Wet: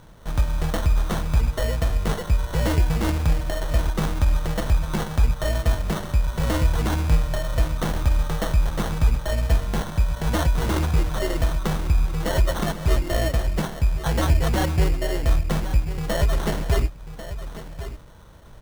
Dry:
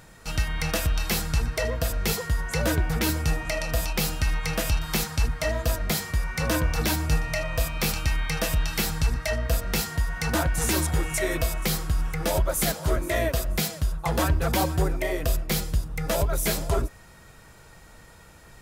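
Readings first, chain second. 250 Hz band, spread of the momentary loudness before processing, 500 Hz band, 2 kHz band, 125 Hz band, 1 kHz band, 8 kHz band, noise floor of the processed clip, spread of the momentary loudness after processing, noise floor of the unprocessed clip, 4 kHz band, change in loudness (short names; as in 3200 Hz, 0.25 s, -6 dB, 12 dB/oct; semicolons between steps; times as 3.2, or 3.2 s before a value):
+2.5 dB, 4 LU, +0.5 dB, -3.0 dB, +5.0 dB, +1.5 dB, -6.5 dB, -41 dBFS, 4 LU, -50 dBFS, -2.5 dB, +2.5 dB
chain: tracing distortion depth 0.33 ms; Butterworth band-stop 2700 Hz, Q 1.2; low shelf 140 Hz +6.5 dB; on a send: echo 1.091 s -12.5 dB; on the sum: sample-and-hold 18×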